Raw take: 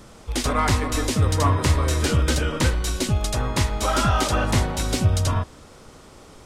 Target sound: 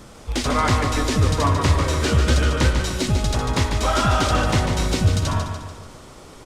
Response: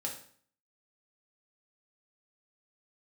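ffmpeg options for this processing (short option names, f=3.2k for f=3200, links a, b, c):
-filter_complex "[0:a]acrossover=split=6800[a][b];[b]acompressor=threshold=-41dB:ratio=4:attack=1:release=60[c];[a][c]amix=inputs=2:normalize=0,asplit=2[d][e];[e]asoftclip=type=tanh:threshold=-24dB,volume=-9dB[f];[d][f]amix=inputs=2:normalize=0,aecho=1:1:146|292|438|584|730|876:0.473|0.232|0.114|0.0557|0.0273|0.0134" -ar 48000 -c:a libopus -b:a 64k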